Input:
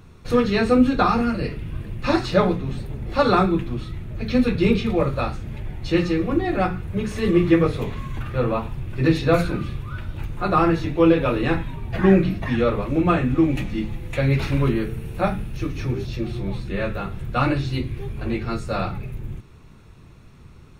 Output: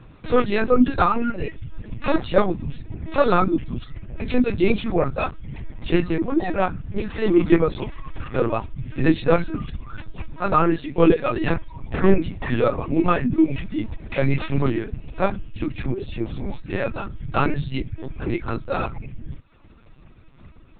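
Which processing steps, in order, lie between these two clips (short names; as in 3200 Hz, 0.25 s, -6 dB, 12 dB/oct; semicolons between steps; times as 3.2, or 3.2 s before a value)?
10.38–11.35 HPF 75 Hz -> 200 Hz 12 dB/oct; reverb removal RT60 0.87 s; LPC vocoder at 8 kHz pitch kept; gain +1.5 dB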